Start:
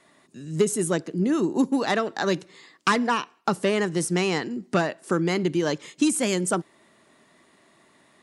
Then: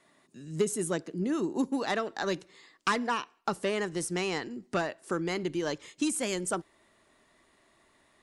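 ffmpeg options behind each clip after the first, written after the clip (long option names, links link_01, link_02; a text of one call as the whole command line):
ffmpeg -i in.wav -af "asubboost=boost=10:cutoff=52,volume=-6dB" out.wav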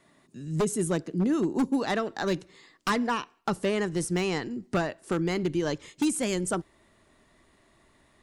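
ffmpeg -i in.wav -af "acontrast=77,lowshelf=frequency=210:gain=11,aeval=exprs='0.237*(abs(mod(val(0)/0.237+3,4)-2)-1)':channel_layout=same,volume=-6dB" out.wav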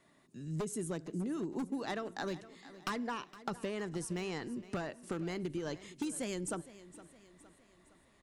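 ffmpeg -i in.wav -af "acompressor=threshold=-29dB:ratio=6,aecho=1:1:463|926|1389|1852:0.141|0.0692|0.0339|0.0166,volume=-5.5dB" out.wav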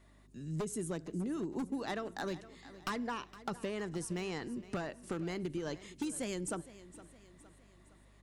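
ffmpeg -i in.wav -af "aeval=exprs='0.0398*(abs(mod(val(0)/0.0398+3,4)-2)-1)':channel_layout=same,aeval=exprs='val(0)+0.000794*(sin(2*PI*50*n/s)+sin(2*PI*2*50*n/s)/2+sin(2*PI*3*50*n/s)/3+sin(2*PI*4*50*n/s)/4+sin(2*PI*5*50*n/s)/5)':channel_layout=same" out.wav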